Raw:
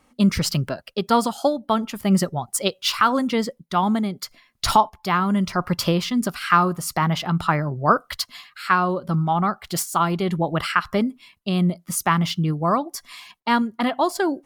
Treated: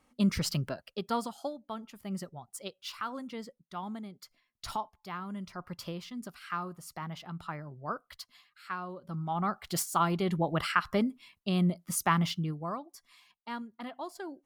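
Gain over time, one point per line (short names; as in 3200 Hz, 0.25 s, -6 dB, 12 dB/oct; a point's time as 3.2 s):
0.72 s -9 dB
1.69 s -19 dB
8.98 s -19 dB
9.58 s -7 dB
12.23 s -7 dB
12.88 s -19.5 dB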